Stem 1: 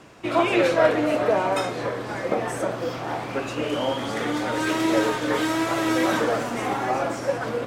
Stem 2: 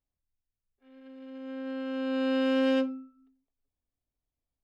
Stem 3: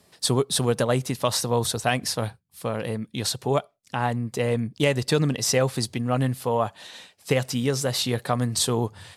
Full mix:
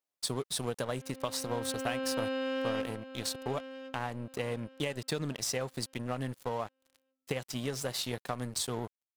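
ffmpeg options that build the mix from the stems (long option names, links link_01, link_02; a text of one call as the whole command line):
ffmpeg -i stem1.wav -i stem2.wav -i stem3.wav -filter_complex "[1:a]highpass=380,acompressor=threshold=-34dB:ratio=4,volume=2dB,asplit=2[link_01][link_02];[link_02]volume=-11.5dB[link_03];[2:a]lowshelf=frequency=270:gain=-3.5,volume=-4.5dB,aeval=exprs='sgn(val(0))*max(abs(val(0))-0.0112,0)':channel_layout=same,acompressor=threshold=-30dB:ratio=6,volume=0dB[link_04];[link_03]aecho=0:1:1076|2152|3228|4304:1|0.26|0.0676|0.0176[link_05];[link_01][link_04][link_05]amix=inputs=3:normalize=0" out.wav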